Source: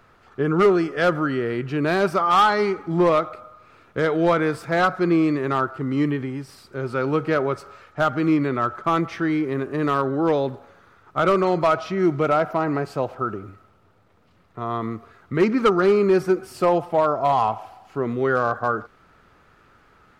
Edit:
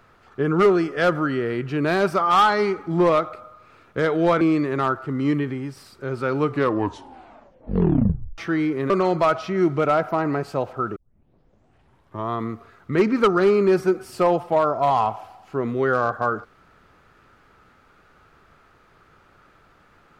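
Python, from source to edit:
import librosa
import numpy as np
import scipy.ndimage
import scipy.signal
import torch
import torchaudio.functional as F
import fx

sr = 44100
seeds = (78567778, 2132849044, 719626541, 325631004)

y = fx.edit(x, sr, fx.cut(start_s=4.41, length_s=0.72),
    fx.tape_stop(start_s=7.1, length_s=2.0),
    fx.cut(start_s=9.62, length_s=1.7),
    fx.tape_start(start_s=13.38, length_s=1.34), tone=tone)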